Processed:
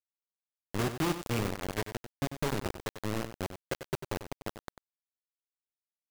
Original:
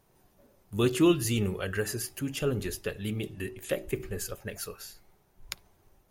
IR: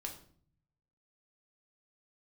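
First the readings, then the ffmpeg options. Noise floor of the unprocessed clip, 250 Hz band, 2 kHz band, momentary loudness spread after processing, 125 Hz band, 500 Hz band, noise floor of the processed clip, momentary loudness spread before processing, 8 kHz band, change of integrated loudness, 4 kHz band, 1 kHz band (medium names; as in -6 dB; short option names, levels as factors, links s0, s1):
-66 dBFS, -7.0 dB, -2.5 dB, 11 LU, -4.0 dB, -6.0 dB, under -85 dBFS, 19 LU, -7.5 dB, -5.0 dB, -4.5 dB, +4.0 dB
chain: -filter_complex "[0:a]acrossover=split=2500[s0][s1];[s1]acompressor=threshold=0.00631:ratio=4:attack=1:release=60[s2];[s0][s2]amix=inputs=2:normalize=0,afwtdn=0.01,lowshelf=f=82:g=4.5,acrossover=split=160|630|2200[s3][s4][s5][s6];[s3]acompressor=threshold=0.02:ratio=4[s7];[s4]acompressor=threshold=0.0141:ratio=4[s8];[s5]acompressor=threshold=0.00501:ratio=4[s9];[s6]acompressor=threshold=0.00158:ratio=4[s10];[s7][s8][s9][s10]amix=inputs=4:normalize=0,acrusher=bits=4:mix=0:aa=0.000001,asplit=2[s11][s12];[s12]aecho=0:1:95:0.299[s13];[s11][s13]amix=inputs=2:normalize=0"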